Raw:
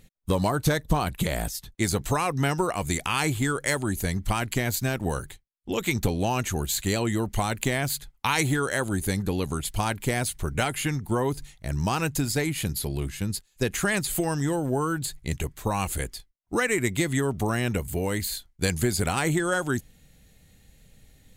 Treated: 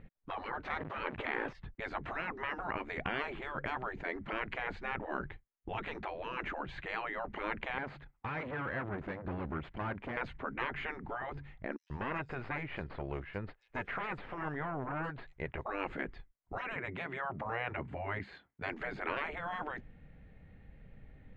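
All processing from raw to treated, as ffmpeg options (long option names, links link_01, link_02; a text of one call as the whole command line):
ffmpeg -i in.wav -filter_complex "[0:a]asettb=1/sr,asplit=3[link_01][link_02][link_03];[link_01]atrim=end=0.714[link_04];[link_02]atrim=start=0.71:end=1.53,asetpts=PTS-STARTPTS,afade=type=in:duration=0.004:curve=qsin,afade=type=out:start_time=0.816:duration=0.004:curve=qsin,aeval=exprs='val(0)+0.5*0.0188*sgn(val(0))':channel_layout=same,lowshelf=frequency=440:gain=5.5[link_05];[link_03]atrim=start=1.526[link_06];[link_04][link_05]acrossfade=duration=0.004:curve1=hsin:curve2=qsin[link_07];[link_07][link_06]acrossfade=duration=0.004:curve1=qsin:curve2=hsin,asettb=1/sr,asplit=3[link_08][link_09][link_10];[link_08]atrim=end=7.784[link_11];[link_09]atrim=start=7.78:end=10.17,asetpts=PTS-STARTPTS,afade=type=in:duration=0.004:curve=qsin,afade=type=out:start_time=2.386:duration=0.004:curve=qsin,aeval=exprs='(tanh(39.8*val(0)+0.5)-tanh(0.5))/39.8':channel_layout=same,highpass=frequency=77:poles=1[link_12];[link_10]atrim=start=10.166[link_13];[link_11][link_12]acrossfade=duration=0.004:curve1=hsin:curve2=qsin[link_14];[link_14][link_13]acrossfade=duration=0.004:curve1=qsin:curve2=hsin,asettb=1/sr,asplit=3[link_15][link_16][link_17];[link_15]atrim=end=11.764[link_18];[link_16]atrim=start=11.76:end=15.66,asetpts=PTS-STARTPTS,afade=type=in:duration=0.004:curve=qsin,afade=type=out:start_time=3.896:duration=0.004:curve=qsin,lowshelf=frequency=350:width_type=q:width=1.5:gain=-10.5,aeval=exprs='(tanh(14.1*val(0)+0.6)-tanh(0.6))/14.1':channel_layout=same,acrossover=split=5100[link_19][link_20];[link_19]adelay=140[link_21];[link_21][link_20]amix=inputs=2:normalize=0,atrim=end_sample=171990[link_22];[link_17]atrim=start=15.656[link_23];[link_18][link_22]acrossfade=duration=0.004:curve1=hsin:curve2=qsin[link_24];[link_24][link_23]acrossfade=duration=0.004:curve1=qsin:curve2=hsin,asettb=1/sr,asplit=3[link_25][link_26][link_27];[link_25]atrim=end=16.764[link_28];[link_26]atrim=start=16.76:end=18.7,asetpts=PTS-STARTPTS,afade=type=in:duration=0.004:curve=qsin,afade=type=out:start_time=1.936:duration=0.004:curve=qsin,highpass=190,equalizer=frequency=4300:width_type=o:width=1.9:gain=-2.5[link_29];[link_27]atrim=start=18.696[link_30];[link_28][link_29]acrossfade=duration=0.004:curve1=hsin:curve2=qsin[link_31];[link_31][link_30]acrossfade=duration=0.004:curve1=qsin:curve2=hsin,afftfilt=real='re*lt(hypot(re,im),0.1)':imag='im*lt(hypot(re,im),0.1)':win_size=1024:overlap=0.75,lowpass=frequency=2100:width=0.5412,lowpass=frequency=2100:width=1.3066,volume=1dB" out.wav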